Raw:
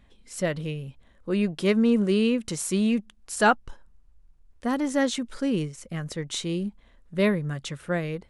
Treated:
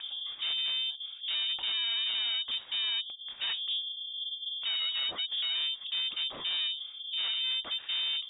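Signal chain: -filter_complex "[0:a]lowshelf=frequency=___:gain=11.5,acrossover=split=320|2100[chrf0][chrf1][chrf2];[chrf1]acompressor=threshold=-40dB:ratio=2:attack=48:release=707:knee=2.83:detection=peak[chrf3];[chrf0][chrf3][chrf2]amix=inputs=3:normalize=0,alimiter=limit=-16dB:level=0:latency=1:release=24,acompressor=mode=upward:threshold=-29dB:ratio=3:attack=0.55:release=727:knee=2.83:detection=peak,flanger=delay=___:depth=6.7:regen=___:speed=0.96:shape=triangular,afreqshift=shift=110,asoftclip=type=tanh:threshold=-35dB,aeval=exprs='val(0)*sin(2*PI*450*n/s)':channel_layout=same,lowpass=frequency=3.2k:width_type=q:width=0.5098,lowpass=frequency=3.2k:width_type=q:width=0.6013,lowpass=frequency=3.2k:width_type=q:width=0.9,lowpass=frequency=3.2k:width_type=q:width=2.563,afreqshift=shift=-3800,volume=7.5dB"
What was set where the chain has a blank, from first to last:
350, 2, -81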